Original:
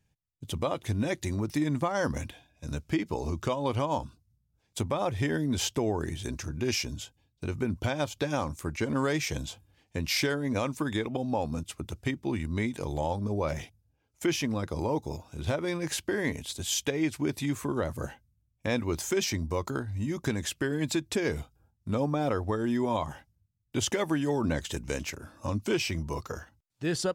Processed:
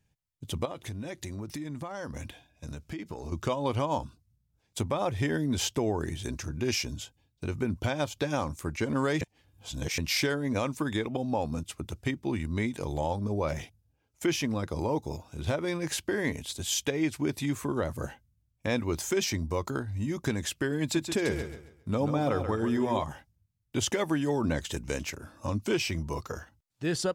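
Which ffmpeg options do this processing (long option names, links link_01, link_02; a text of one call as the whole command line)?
ffmpeg -i in.wav -filter_complex "[0:a]asettb=1/sr,asplit=3[link_01][link_02][link_03];[link_01]atrim=end=0.654[link_04];[link_02]atrim=start=0.65:end=3.32,asetpts=PTS-STARTPTS,afade=type=in:duration=0.004:curve=qsin,afade=type=out:start_time=2.666:duration=0.004:curve=qsin,acompressor=threshold=-34dB:ratio=6:attack=3.2:release=140:knee=1:detection=peak[link_05];[link_03]atrim=start=3.316[link_06];[link_04][link_05]acrossfade=duration=0.004:curve1=hsin:curve2=qsin[link_07];[link_07][link_06]acrossfade=duration=0.004:curve1=qsin:curve2=hsin,asettb=1/sr,asplit=3[link_08][link_09][link_10];[link_08]atrim=end=20.824[link_11];[link_09]atrim=start=20.82:end=23.04,asetpts=PTS-STARTPTS,afade=type=in:duration=0.004:curve=qsin,afade=type=out:start_time=2.216:duration=0.004:curve=qsin,aecho=1:1:136|272|408|544:0.398|0.123|0.0383|0.0119,atrim=end_sample=97902[link_12];[link_10]atrim=start=23.036[link_13];[link_11][link_12]acrossfade=duration=0.004:curve1=hsin:curve2=qsin[link_14];[link_14][link_13]acrossfade=duration=0.004:curve1=qsin:curve2=hsin,asplit=3[link_15][link_16][link_17];[link_15]atrim=end=9.212[link_18];[link_16]atrim=start=9.208:end=9.982,asetpts=PTS-STARTPTS,areverse[link_19];[link_17]atrim=start=9.978[link_20];[link_18][link_19]acrossfade=duration=0.004:curve1=hsin:curve2=hsin[link_21];[link_21][link_20]acrossfade=duration=0.004:curve1=hsin:curve2=hsin" out.wav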